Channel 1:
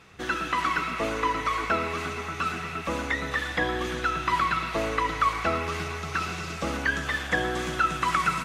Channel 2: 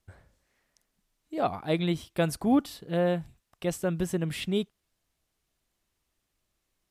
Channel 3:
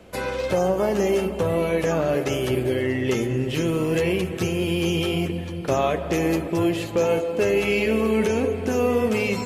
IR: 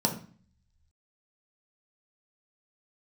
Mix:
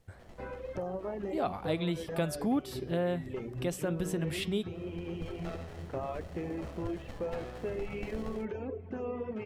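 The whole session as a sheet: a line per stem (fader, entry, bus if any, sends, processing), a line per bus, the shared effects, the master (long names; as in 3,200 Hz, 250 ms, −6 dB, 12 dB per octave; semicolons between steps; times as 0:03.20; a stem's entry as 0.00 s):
−15.5 dB, 0.00 s, no send, comb filter 1.6 ms, depth 95%; windowed peak hold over 33 samples; automatic ducking −14 dB, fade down 0.55 s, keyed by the second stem
+1.0 dB, 0.00 s, no send, hum removal 185.7 Hz, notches 32
−13.0 dB, 0.25 s, no send, reverb reduction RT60 1.2 s; low-pass filter 1,700 Hz 12 dB per octave; low-shelf EQ 60 Hz +9.5 dB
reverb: not used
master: downward compressor 2 to 1, threshold −32 dBFS, peak gain reduction 8.5 dB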